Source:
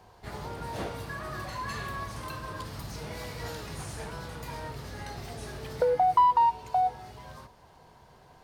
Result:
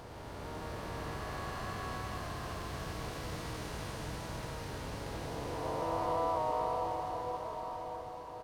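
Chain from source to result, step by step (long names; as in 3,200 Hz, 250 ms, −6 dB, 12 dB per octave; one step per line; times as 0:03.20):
spectrum smeared in time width 1,010 ms
pitch-shifted copies added −7 semitones −2 dB, +3 semitones −10 dB, +5 semitones −17 dB
feedback delay with all-pass diffusion 1,038 ms, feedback 42%, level −7.5 dB
level −3 dB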